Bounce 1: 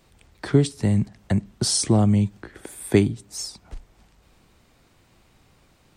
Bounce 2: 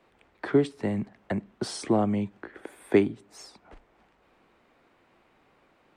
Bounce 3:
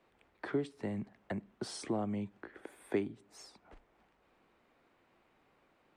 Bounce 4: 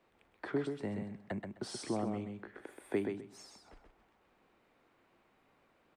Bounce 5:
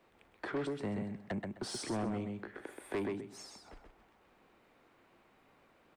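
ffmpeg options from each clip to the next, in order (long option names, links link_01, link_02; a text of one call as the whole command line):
ffmpeg -i in.wav -filter_complex "[0:a]acrossover=split=240 2800:gain=0.141 1 0.126[link_01][link_02][link_03];[link_01][link_02][link_03]amix=inputs=3:normalize=0" out.wav
ffmpeg -i in.wav -af "acompressor=threshold=-31dB:ratio=1.5,volume=-7dB" out.wav
ffmpeg -i in.wav -af "aecho=1:1:129|258|387:0.531|0.0956|0.0172,volume=-1dB" out.wav
ffmpeg -i in.wav -af "asoftclip=type=tanh:threshold=-35dB,volume=4dB" out.wav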